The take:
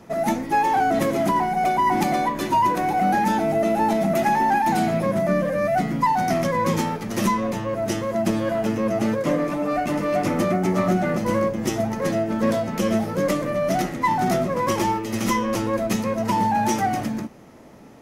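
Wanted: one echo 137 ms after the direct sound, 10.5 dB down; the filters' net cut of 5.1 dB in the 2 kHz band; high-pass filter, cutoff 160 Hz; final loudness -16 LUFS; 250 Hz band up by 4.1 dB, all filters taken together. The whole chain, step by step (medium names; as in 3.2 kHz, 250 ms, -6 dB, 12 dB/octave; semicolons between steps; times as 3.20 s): high-pass 160 Hz; peaking EQ 250 Hz +6.5 dB; peaking EQ 2 kHz -6.5 dB; delay 137 ms -10.5 dB; trim +4.5 dB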